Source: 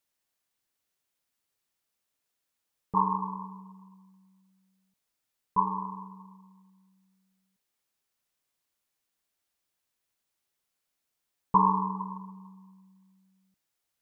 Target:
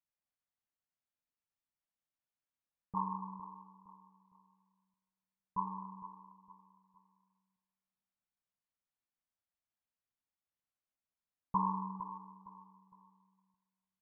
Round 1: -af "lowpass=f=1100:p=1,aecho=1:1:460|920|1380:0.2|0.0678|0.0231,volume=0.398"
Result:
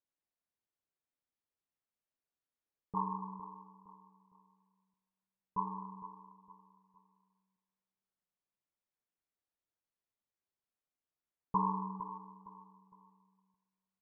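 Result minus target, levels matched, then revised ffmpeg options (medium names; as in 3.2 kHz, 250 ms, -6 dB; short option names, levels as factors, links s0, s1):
500 Hz band +8.5 dB
-af "lowpass=f=1100:p=1,equalizer=f=400:w=2.3:g=-11,aecho=1:1:460|920|1380:0.2|0.0678|0.0231,volume=0.398"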